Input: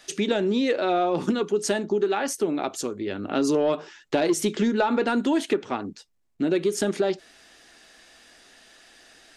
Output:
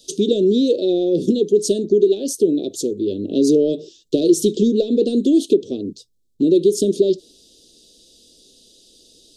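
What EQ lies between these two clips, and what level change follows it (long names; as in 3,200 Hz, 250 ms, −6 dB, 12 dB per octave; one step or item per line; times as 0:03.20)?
elliptic band-stop filter 490–3,600 Hz, stop band 40 dB
mains-hum notches 60/120 Hz
dynamic equaliser 350 Hz, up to +5 dB, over −46 dBFS, Q 1.6
+5.5 dB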